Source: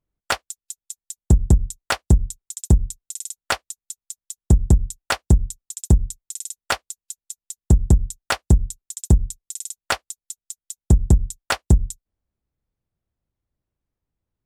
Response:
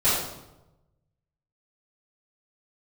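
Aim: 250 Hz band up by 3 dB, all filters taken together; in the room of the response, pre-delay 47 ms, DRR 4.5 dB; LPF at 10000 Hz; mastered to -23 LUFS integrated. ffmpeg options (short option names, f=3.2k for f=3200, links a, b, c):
-filter_complex "[0:a]lowpass=10k,equalizer=f=250:t=o:g=4.5,asplit=2[a][b];[1:a]atrim=start_sample=2205,adelay=47[c];[b][c]afir=irnorm=-1:irlink=0,volume=-20dB[d];[a][d]amix=inputs=2:normalize=0,volume=-4dB"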